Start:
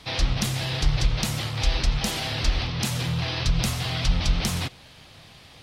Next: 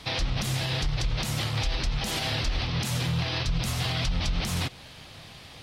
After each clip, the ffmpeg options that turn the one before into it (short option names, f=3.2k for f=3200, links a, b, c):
-af "alimiter=limit=-21dB:level=0:latency=1:release=133,volume=2.5dB"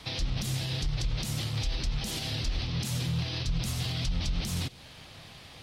-filter_complex "[0:a]acrossover=split=430|3000[a][b][c];[b]acompressor=threshold=-45dB:ratio=3[d];[a][d][c]amix=inputs=3:normalize=0,volume=-2.5dB"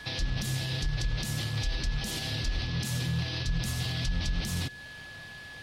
-af "aeval=exprs='val(0)+0.00631*sin(2*PI*1700*n/s)':c=same"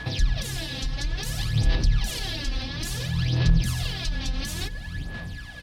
-filter_complex "[0:a]asplit=2[a][b];[b]adelay=346,lowpass=f=900:p=1,volume=-9.5dB,asplit=2[c][d];[d]adelay=346,lowpass=f=900:p=1,volume=0.51,asplit=2[e][f];[f]adelay=346,lowpass=f=900:p=1,volume=0.51,asplit=2[g][h];[h]adelay=346,lowpass=f=900:p=1,volume=0.51,asplit=2[i][j];[j]adelay=346,lowpass=f=900:p=1,volume=0.51,asplit=2[k][l];[l]adelay=346,lowpass=f=900:p=1,volume=0.51[m];[a][c][e][g][i][k][m]amix=inputs=7:normalize=0,aphaser=in_gain=1:out_gain=1:delay=3.8:decay=0.69:speed=0.58:type=sinusoidal,aeval=exprs='val(0)+0.00562*(sin(2*PI*60*n/s)+sin(2*PI*2*60*n/s)/2+sin(2*PI*3*60*n/s)/3+sin(2*PI*4*60*n/s)/4+sin(2*PI*5*60*n/s)/5)':c=same"